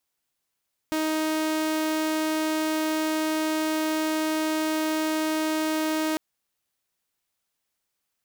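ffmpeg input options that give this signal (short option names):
-f lavfi -i "aevalsrc='0.0891*(2*mod(313*t,1)-1)':d=5.25:s=44100"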